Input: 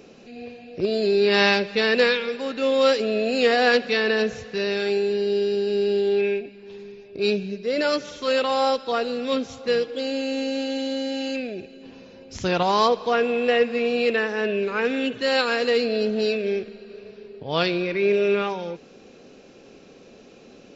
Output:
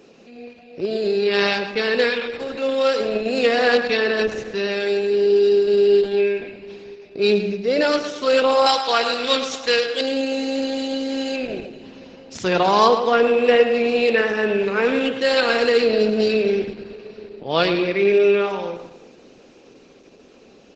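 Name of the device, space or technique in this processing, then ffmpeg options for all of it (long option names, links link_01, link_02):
video call: -filter_complex "[0:a]asettb=1/sr,asplit=3[link_01][link_02][link_03];[link_01]atrim=end=8.664[link_04];[link_02]atrim=start=8.66:end=10.01,asetpts=PTS-STARTPTS,afade=type=in:duration=0.004:curve=qsin,afade=type=out:start_time=1.346:duration=0.004:curve=qsin,tiltshelf=frequency=690:gain=-9.5[link_05];[link_03]atrim=start=10.006[link_06];[link_04][link_05]acrossfade=duration=0.004:curve1=hsin:curve2=qsin[link_07];[link_07][link_06]acrossfade=duration=0.004:curve1=qsin:curve2=hsin,highpass=170,asplit=2[link_08][link_09];[link_09]adelay=111,lowpass=frequency=3800:poles=1,volume=-8dB,asplit=2[link_10][link_11];[link_11]adelay=111,lowpass=frequency=3800:poles=1,volume=0.45,asplit=2[link_12][link_13];[link_13]adelay=111,lowpass=frequency=3800:poles=1,volume=0.45,asplit=2[link_14][link_15];[link_15]adelay=111,lowpass=frequency=3800:poles=1,volume=0.45,asplit=2[link_16][link_17];[link_17]adelay=111,lowpass=frequency=3800:poles=1,volume=0.45[link_18];[link_08][link_10][link_12][link_14][link_16][link_18]amix=inputs=6:normalize=0,dynaudnorm=framelen=430:gausssize=17:maxgain=10dB" -ar 48000 -c:a libopus -b:a 12k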